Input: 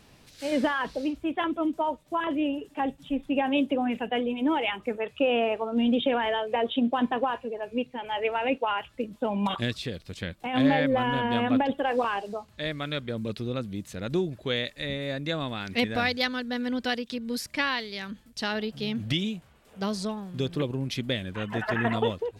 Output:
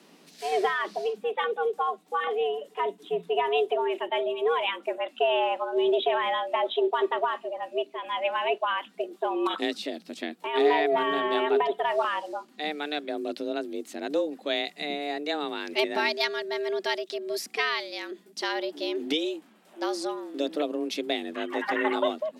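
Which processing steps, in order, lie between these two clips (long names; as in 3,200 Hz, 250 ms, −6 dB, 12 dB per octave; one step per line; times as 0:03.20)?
frequency shifter +150 Hz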